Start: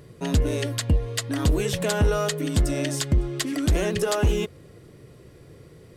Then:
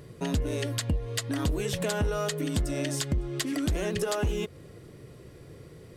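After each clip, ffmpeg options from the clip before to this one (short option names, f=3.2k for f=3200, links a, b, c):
-af "acompressor=threshold=-28dB:ratio=2.5"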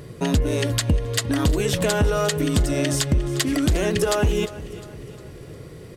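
-af "aecho=1:1:354|708|1062|1416:0.141|0.0678|0.0325|0.0156,volume=8dB"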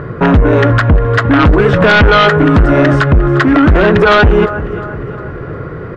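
-filter_complex "[0:a]asplit=2[a][b];[b]volume=18dB,asoftclip=hard,volume=-18dB,volume=-10dB[c];[a][c]amix=inputs=2:normalize=0,lowpass=f=1.4k:t=q:w=3.9,aeval=exprs='0.668*sin(PI/2*2.82*val(0)/0.668)':c=same"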